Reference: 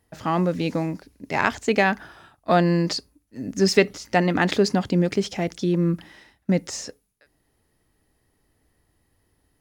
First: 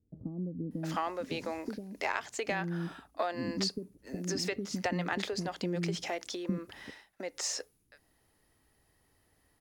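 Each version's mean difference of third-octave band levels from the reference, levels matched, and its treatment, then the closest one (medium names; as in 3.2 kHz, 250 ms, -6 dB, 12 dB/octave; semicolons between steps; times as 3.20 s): 11.0 dB: bass shelf 210 Hz -6.5 dB; compression 16:1, threshold -28 dBFS, peak gain reduction 16.5 dB; bands offset in time lows, highs 710 ms, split 350 Hz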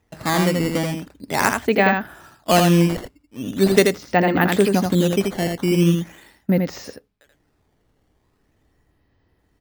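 7.0 dB: Bessel low-pass 3.7 kHz, order 8; decimation with a swept rate 10×, swing 160% 0.41 Hz; delay 82 ms -4.5 dB; trim +2.5 dB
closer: second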